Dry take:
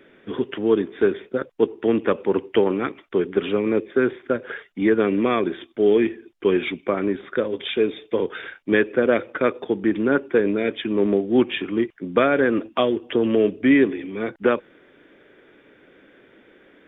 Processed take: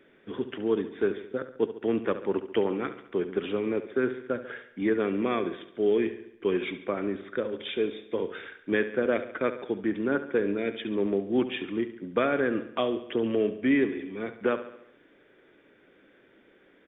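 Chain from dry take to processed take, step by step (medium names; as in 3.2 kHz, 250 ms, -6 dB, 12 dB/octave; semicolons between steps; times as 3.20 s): feedback delay 70 ms, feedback 54%, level -12.5 dB; trim -7.5 dB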